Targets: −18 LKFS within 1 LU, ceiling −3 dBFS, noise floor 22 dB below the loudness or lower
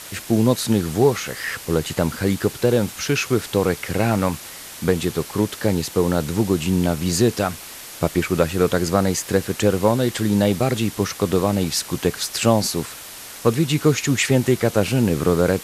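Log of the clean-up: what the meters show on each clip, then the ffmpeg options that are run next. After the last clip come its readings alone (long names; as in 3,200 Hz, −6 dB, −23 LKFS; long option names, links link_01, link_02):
background noise floor −37 dBFS; target noise floor −43 dBFS; integrated loudness −20.5 LKFS; sample peak −2.5 dBFS; target loudness −18.0 LKFS
→ -af "afftdn=noise_reduction=6:noise_floor=-37"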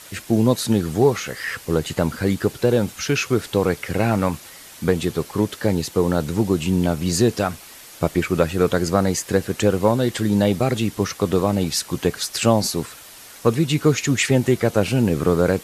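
background noise floor −42 dBFS; target noise floor −43 dBFS
→ -af "afftdn=noise_reduction=6:noise_floor=-42"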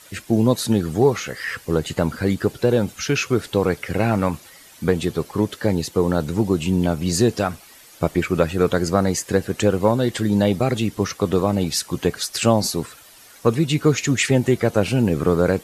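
background noise floor −47 dBFS; integrated loudness −21.0 LKFS; sample peak −2.5 dBFS; target loudness −18.0 LKFS
→ -af "volume=3dB,alimiter=limit=-3dB:level=0:latency=1"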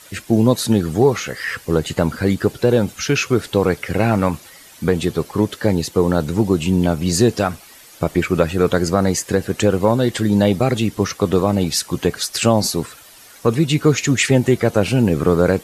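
integrated loudness −18.0 LKFS; sample peak −3.0 dBFS; background noise floor −44 dBFS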